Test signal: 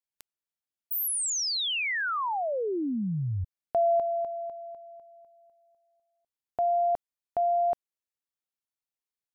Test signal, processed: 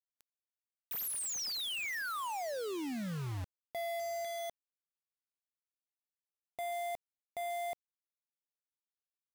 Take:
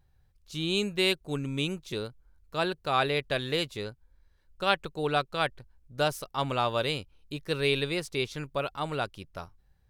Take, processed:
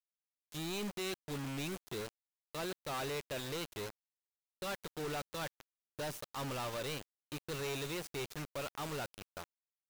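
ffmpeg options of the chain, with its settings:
-filter_complex "[0:a]volume=27dB,asoftclip=hard,volume=-27dB,asplit=2[a][b];[b]adelay=136,lowpass=f=1.4k:p=1,volume=-23.5dB,asplit=2[c][d];[d]adelay=136,lowpass=f=1.4k:p=1,volume=0.24[e];[a][c][e]amix=inputs=3:normalize=0,acrusher=bits=5:mix=0:aa=0.000001,volume=-7dB"

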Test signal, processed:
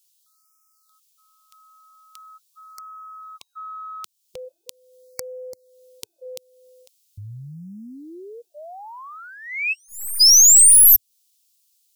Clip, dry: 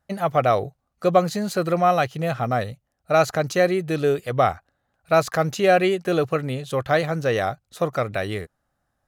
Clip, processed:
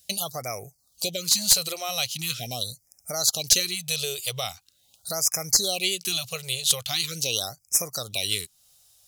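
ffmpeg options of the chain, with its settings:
-af "equalizer=f=300:t=o:w=0.32:g=-3,acompressor=threshold=-42dB:ratio=2,aexciter=amount=15.9:drive=7.6:freq=2.7k,aeval=exprs='clip(val(0),-1,0.299)':c=same,equalizer=f=110:t=o:w=0.69:g=2.5,afftfilt=real='re*(1-between(b*sr/1024,230*pow(3600/230,0.5+0.5*sin(2*PI*0.42*pts/sr))/1.41,230*pow(3600/230,0.5+0.5*sin(2*PI*0.42*pts/sr))*1.41))':imag='im*(1-between(b*sr/1024,230*pow(3600/230,0.5+0.5*sin(2*PI*0.42*pts/sr))/1.41,230*pow(3600/230,0.5+0.5*sin(2*PI*0.42*pts/sr))*1.41))':win_size=1024:overlap=0.75,volume=-1dB"

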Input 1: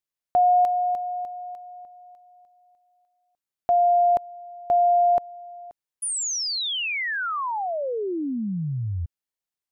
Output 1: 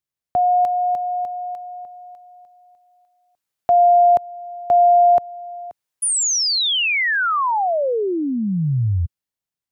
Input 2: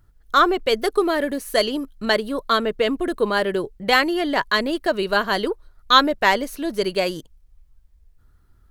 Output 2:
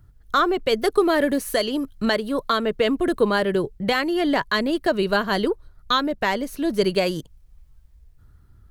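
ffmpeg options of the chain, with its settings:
-filter_complex "[0:a]equalizer=f=110:t=o:w=2.3:g=9,acrossover=split=420[a][b];[b]dynaudnorm=f=150:g=13:m=8dB[c];[a][c]amix=inputs=2:normalize=0,alimiter=limit=-9dB:level=0:latency=1:release=359"

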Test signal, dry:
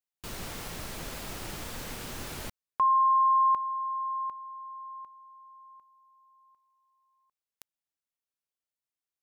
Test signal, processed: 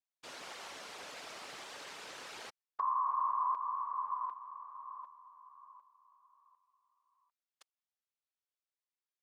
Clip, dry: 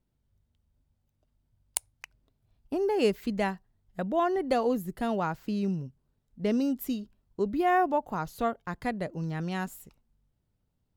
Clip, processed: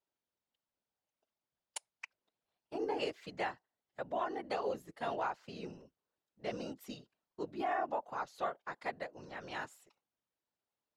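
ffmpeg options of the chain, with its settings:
-af "highpass=520,lowpass=6.3k,afftfilt=real='hypot(re,im)*cos(2*PI*random(0))':imag='hypot(re,im)*sin(2*PI*random(1))':win_size=512:overlap=0.75,alimiter=level_in=3dB:limit=-24dB:level=0:latency=1:release=135,volume=-3dB,volume=1.5dB"

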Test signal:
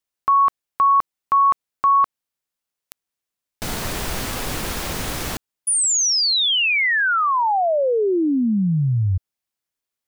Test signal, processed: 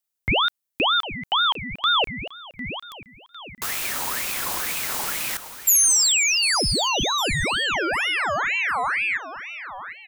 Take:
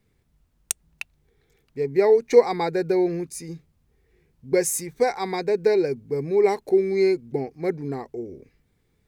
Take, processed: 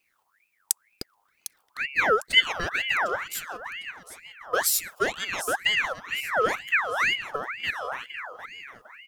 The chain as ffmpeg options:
-af "aecho=1:1:753|1506|2259|3012:0.251|0.0955|0.0363|0.0138,crystalizer=i=1.5:c=0,aeval=exprs='val(0)*sin(2*PI*1700*n/s+1700*0.5/2.1*sin(2*PI*2.1*n/s))':c=same,volume=-2.5dB"

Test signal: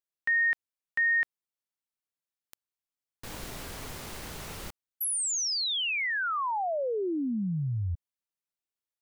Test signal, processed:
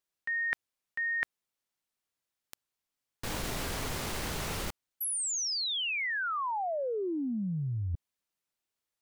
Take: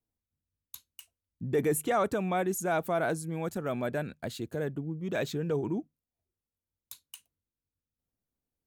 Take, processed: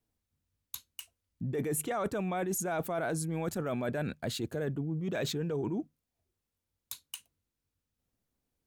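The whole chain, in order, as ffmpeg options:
-af "highshelf=f=11k:g=-4,areverse,acompressor=threshold=-39dB:ratio=6:attack=14:release=60:knee=1:detection=peak,areverse,volume=6dB"

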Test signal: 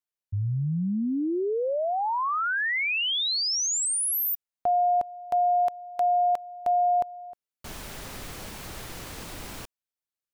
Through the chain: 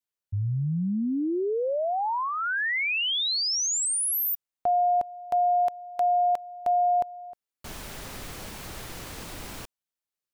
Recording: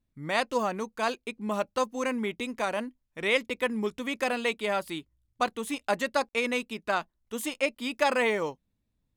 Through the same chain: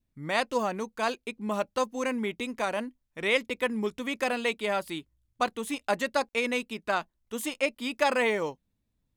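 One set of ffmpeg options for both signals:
-af "adynamicequalizer=threshold=0.00501:dfrequency=1200:dqfactor=4:tfrequency=1200:tqfactor=4:attack=5:release=100:ratio=0.375:range=2:mode=cutabove:tftype=bell"

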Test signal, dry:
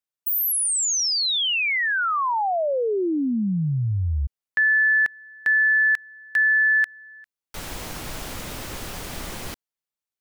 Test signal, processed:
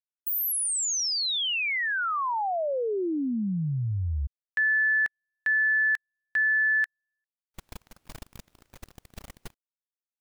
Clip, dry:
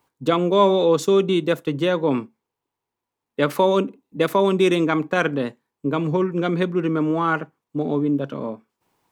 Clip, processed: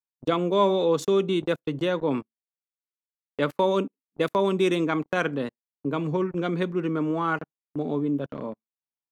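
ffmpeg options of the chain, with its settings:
-af "agate=range=-35dB:threshold=-32dB:ratio=16:release=21:detection=rms,volume=-5dB"

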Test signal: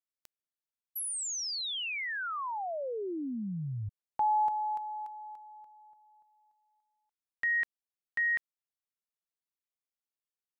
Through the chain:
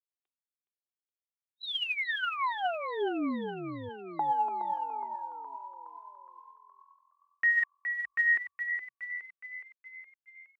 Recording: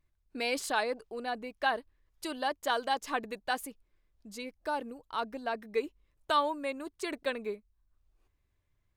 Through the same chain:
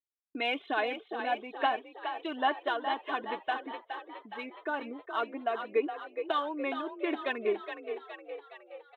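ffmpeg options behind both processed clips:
-filter_complex "[0:a]highpass=180,aresample=8000,aresample=44100,afftdn=nr=14:nf=-52,aecho=1:1:2.8:0.52,alimiter=limit=-22dB:level=0:latency=1:release=362,aphaser=in_gain=1:out_gain=1:delay=3.3:decay=0.36:speed=1.2:type=sinusoidal,asplit=2[a][b];[b]asplit=7[c][d][e][f][g][h][i];[c]adelay=417,afreqshift=42,volume=-8dB[j];[d]adelay=834,afreqshift=84,volume=-12.9dB[k];[e]adelay=1251,afreqshift=126,volume=-17.8dB[l];[f]adelay=1668,afreqshift=168,volume=-22.6dB[m];[g]adelay=2085,afreqshift=210,volume=-27.5dB[n];[h]adelay=2502,afreqshift=252,volume=-32.4dB[o];[i]adelay=2919,afreqshift=294,volume=-37.3dB[p];[j][k][l][m][n][o][p]amix=inputs=7:normalize=0[q];[a][q]amix=inputs=2:normalize=0,agate=range=-16dB:threshold=-54dB:ratio=3:release=434:detection=peak,volume=1dB"

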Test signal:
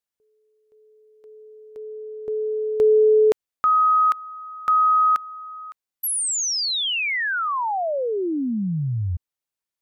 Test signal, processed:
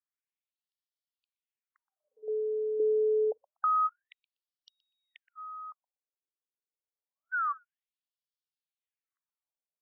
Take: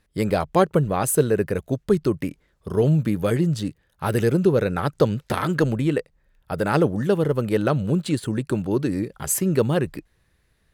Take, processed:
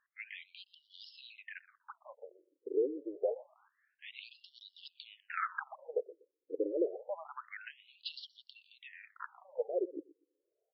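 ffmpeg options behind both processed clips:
-filter_complex "[0:a]acompressor=threshold=-19dB:ratio=4:attack=4.8:release=104:knee=1:detection=peak,asplit=2[a][b];[b]adelay=122,lowpass=f=3.9k:p=1,volume=-19dB,asplit=2[c][d];[d]adelay=122,lowpass=f=3.9k:p=1,volume=0.2[e];[a][c][e]amix=inputs=3:normalize=0,afftfilt=real='re*between(b*sr/1024,380*pow(4100/380,0.5+0.5*sin(2*PI*0.27*pts/sr))/1.41,380*pow(4100/380,0.5+0.5*sin(2*PI*0.27*pts/sr))*1.41)':imag='im*between(b*sr/1024,380*pow(4100/380,0.5+0.5*sin(2*PI*0.27*pts/sr))/1.41,380*pow(4100/380,0.5+0.5*sin(2*PI*0.27*pts/sr))*1.41)':win_size=1024:overlap=0.75,volume=-5.5dB"

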